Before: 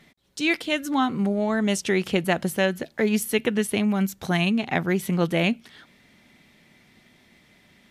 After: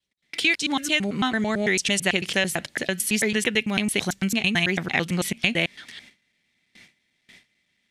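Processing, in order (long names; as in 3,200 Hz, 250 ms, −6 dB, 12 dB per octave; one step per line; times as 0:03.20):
slices reordered back to front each 111 ms, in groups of 3
noise gate with hold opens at −44 dBFS
flat-topped bell 4,100 Hz +10 dB 2.8 octaves
downward compressor 2.5 to 1, threshold −20 dBFS, peak gain reduction 7.5 dB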